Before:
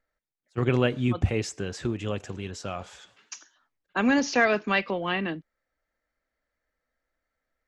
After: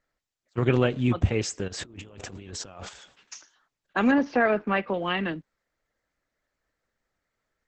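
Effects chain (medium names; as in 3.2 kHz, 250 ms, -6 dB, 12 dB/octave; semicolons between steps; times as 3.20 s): 1.68–2.89 s: compressor with a negative ratio -43 dBFS, ratio -1; 4.11–4.94 s: low-pass 1.7 kHz 12 dB/octave; trim +1.5 dB; Opus 10 kbps 48 kHz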